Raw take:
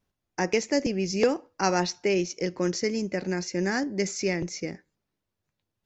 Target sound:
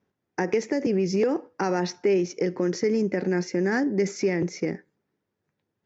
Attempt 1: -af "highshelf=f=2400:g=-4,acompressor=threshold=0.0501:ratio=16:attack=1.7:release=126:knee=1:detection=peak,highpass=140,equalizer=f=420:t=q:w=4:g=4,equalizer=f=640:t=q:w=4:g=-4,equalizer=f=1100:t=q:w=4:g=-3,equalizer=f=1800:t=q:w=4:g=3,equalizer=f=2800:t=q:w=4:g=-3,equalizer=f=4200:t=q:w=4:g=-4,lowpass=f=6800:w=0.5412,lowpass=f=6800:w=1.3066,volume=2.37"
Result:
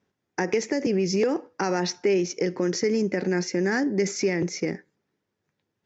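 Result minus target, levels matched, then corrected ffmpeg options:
4 kHz band +5.0 dB
-af "highshelf=f=2400:g=-11,acompressor=threshold=0.0501:ratio=16:attack=1.7:release=126:knee=1:detection=peak,highpass=140,equalizer=f=420:t=q:w=4:g=4,equalizer=f=640:t=q:w=4:g=-4,equalizer=f=1100:t=q:w=4:g=-3,equalizer=f=1800:t=q:w=4:g=3,equalizer=f=2800:t=q:w=4:g=-3,equalizer=f=4200:t=q:w=4:g=-4,lowpass=f=6800:w=0.5412,lowpass=f=6800:w=1.3066,volume=2.37"

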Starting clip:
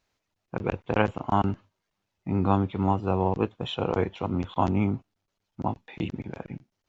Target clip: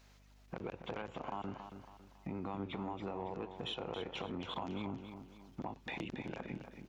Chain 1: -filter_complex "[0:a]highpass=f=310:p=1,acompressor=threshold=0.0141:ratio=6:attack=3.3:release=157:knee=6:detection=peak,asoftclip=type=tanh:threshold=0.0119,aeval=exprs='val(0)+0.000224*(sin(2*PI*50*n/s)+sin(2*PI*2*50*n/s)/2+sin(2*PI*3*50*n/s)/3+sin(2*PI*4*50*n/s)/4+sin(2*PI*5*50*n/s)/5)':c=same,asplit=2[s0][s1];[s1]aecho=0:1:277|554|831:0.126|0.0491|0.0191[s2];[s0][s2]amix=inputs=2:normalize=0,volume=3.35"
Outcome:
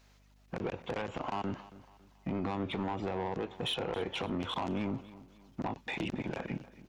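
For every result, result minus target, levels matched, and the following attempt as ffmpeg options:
compression: peak gain reduction -10 dB; echo-to-direct -9 dB
-filter_complex "[0:a]highpass=f=310:p=1,acompressor=threshold=0.00355:ratio=6:attack=3.3:release=157:knee=6:detection=peak,asoftclip=type=tanh:threshold=0.0119,aeval=exprs='val(0)+0.000224*(sin(2*PI*50*n/s)+sin(2*PI*2*50*n/s)/2+sin(2*PI*3*50*n/s)/3+sin(2*PI*4*50*n/s)/4+sin(2*PI*5*50*n/s)/5)':c=same,asplit=2[s0][s1];[s1]aecho=0:1:277|554|831:0.126|0.0491|0.0191[s2];[s0][s2]amix=inputs=2:normalize=0,volume=3.35"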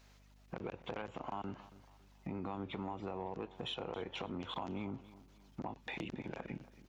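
echo-to-direct -9 dB
-filter_complex "[0:a]highpass=f=310:p=1,acompressor=threshold=0.00355:ratio=6:attack=3.3:release=157:knee=6:detection=peak,asoftclip=type=tanh:threshold=0.0119,aeval=exprs='val(0)+0.000224*(sin(2*PI*50*n/s)+sin(2*PI*2*50*n/s)/2+sin(2*PI*3*50*n/s)/3+sin(2*PI*4*50*n/s)/4+sin(2*PI*5*50*n/s)/5)':c=same,asplit=2[s0][s1];[s1]aecho=0:1:277|554|831|1108:0.355|0.138|0.054|0.021[s2];[s0][s2]amix=inputs=2:normalize=0,volume=3.35"

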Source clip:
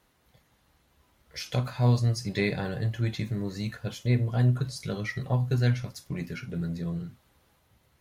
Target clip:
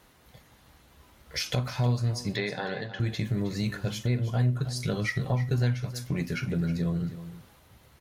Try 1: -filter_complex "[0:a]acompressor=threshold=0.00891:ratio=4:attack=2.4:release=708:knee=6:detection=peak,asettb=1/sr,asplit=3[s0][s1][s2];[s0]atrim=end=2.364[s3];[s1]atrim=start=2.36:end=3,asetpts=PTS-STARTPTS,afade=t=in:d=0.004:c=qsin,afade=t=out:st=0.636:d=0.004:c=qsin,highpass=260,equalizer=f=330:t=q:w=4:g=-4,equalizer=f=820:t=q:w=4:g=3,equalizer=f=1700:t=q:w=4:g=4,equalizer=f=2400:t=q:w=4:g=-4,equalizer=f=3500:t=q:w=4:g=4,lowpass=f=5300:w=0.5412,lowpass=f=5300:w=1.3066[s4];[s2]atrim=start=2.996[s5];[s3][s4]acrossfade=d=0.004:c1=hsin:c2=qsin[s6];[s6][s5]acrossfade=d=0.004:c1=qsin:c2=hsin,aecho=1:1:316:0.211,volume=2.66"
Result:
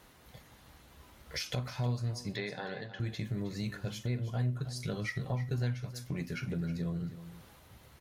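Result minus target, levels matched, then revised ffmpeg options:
compression: peak gain reduction +7 dB
-filter_complex "[0:a]acompressor=threshold=0.0266:ratio=4:attack=2.4:release=708:knee=6:detection=peak,asettb=1/sr,asplit=3[s0][s1][s2];[s0]atrim=end=2.364[s3];[s1]atrim=start=2.36:end=3,asetpts=PTS-STARTPTS,afade=t=in:d=0.004:c=qsin,afade=t=out:st=0.636:d=0.004:c=qsin,highpass=260,equalizer=f=330:t=q:w=4:g=-4,equalizer=f=820:t=q:w=4:g=3,equalizer=f=1700:t=q:w=4:g=4,equalizer=f=2400:t=q:w=4:g=-4,equalizer=f=3500:t=q:w=4:g=4,lowpass=f=5300:w=0.5412,lowpass=f=5300:w=1.3066[s4];[s2]atrim=start=2.996[s5];[s3][s4]acrossfade=d=0.004:c1=hsin:c2=qsin[s6];[s6][s5]acrossfade=d=0.004:c1=qsin:c2=hsin,aecho=1:1:316:0.211,volume=2.66"

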